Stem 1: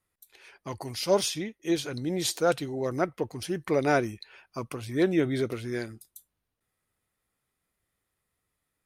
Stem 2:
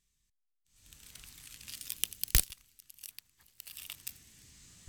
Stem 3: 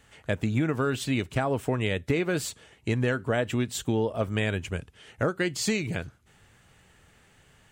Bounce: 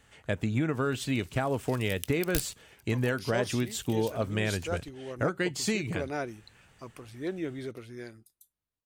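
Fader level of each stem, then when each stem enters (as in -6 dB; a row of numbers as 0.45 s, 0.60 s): -10.0 dB, -6.5 dB, -2.5 dB; 2.25 s, 0.00 s, 0.00 s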